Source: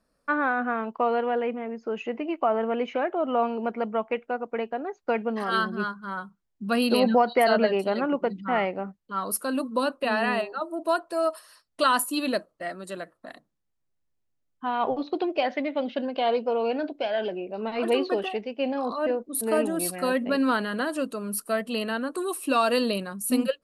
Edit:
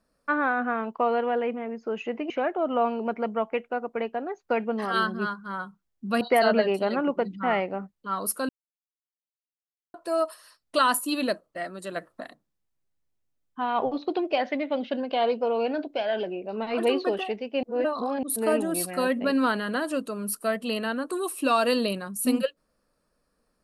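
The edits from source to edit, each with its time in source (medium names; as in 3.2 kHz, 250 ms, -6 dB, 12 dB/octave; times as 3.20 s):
2.30–2.88 s: delete
6.79–7.26 s: delete
9.54–10.99 s: mute
13.01–13.28 s: gain +5.5 dB
18.68–19.28 s: reverse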